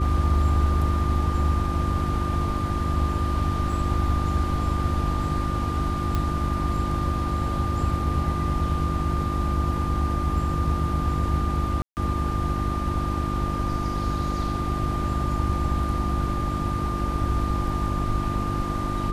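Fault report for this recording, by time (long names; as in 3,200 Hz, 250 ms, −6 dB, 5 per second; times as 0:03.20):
mains hum 50 Hz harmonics 7 −29 dBFS
whistle 1,200 Hz −30 dBFS
0:03.72: drop-out 3.4 ms
0:06.15: click −13 dBFS
0:11.82–0:11.97: drop-out 149 ms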